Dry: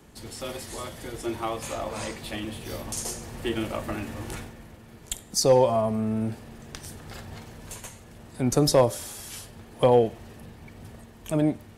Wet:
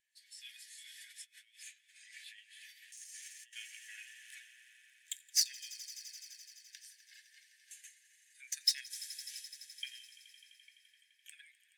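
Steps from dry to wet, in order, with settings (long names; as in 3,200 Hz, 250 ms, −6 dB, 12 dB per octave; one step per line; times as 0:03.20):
stylus tracing distortion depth 0.045 ms
echo that builds up and dies away 85 ms, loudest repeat 5, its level −14 dB
0:00.83–0:03.53: compressor whose output falls as the input rises −37 dBFS, ratio −1
Butterworth high-pass 1,600 Hz 96 dB per octave
every bin expanded away from the loudest bin 1.5 to 1
level −6 dB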